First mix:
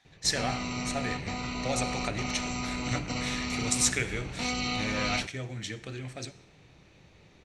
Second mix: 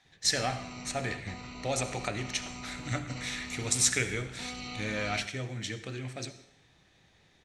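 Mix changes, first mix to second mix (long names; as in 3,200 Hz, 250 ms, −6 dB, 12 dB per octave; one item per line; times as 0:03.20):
speech: send +6.0 dB
background −9.5 dB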